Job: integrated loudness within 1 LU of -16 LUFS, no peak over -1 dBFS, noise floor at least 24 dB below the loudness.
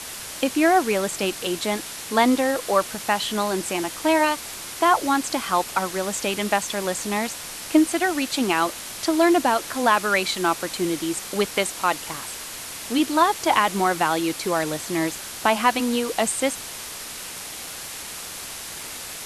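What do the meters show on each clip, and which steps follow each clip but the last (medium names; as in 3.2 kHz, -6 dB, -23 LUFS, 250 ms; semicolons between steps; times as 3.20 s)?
noise floor -36 dBFS; noise floor target -47 dBFS; loudness -23.0 LUFS; peak level -3.0 dBFS; loudness target -16.0 LUFS
-> noise reduction 11 dB, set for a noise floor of -36 dBFS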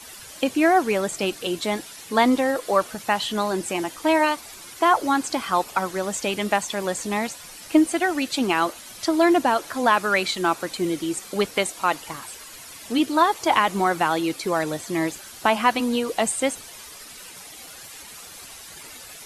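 noise floor -42 dBFS; noise floor target -47 dBFS
-> noise reduction 6 dB, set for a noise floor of -42 dBFS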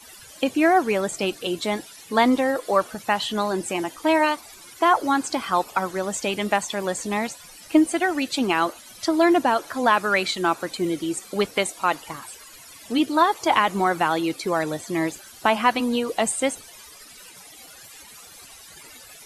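noise floor -46 dBFS; noise floor target -47 dBFS
-> noise reduction 6 dB, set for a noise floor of -46 dBFS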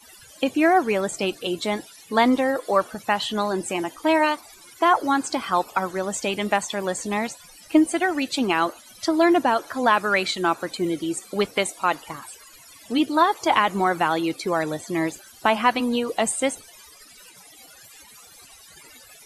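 noise floor -49 dBFS; loudness -23.0 LUFS; peak level -3.5 dBFS; loudness target -16.0 LUFS
-> trim +7 dB; peak limiter -1 dBFS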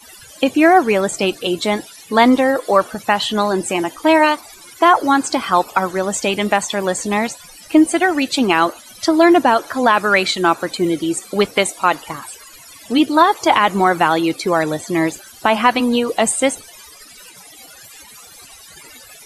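loudness -16.0 LUFS; peak level -1.0 dBFS; noise floor -42 dBFS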